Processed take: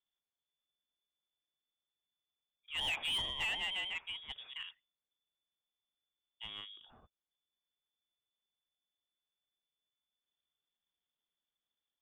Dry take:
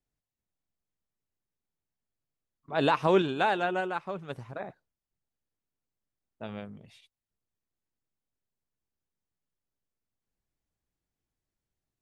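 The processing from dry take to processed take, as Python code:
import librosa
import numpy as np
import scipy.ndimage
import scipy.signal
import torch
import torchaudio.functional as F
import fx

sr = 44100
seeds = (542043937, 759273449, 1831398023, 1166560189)

y = fx.freq_invert(x, sr, carrier_hz=3500)
y = 10.0 ** (-25.0 / 20.0) * np.tanh(y / 10.0 ** (-25.0 / 20.0))
y = fx.high_shelf(y, sr, hz=2300.0, db=-11.5)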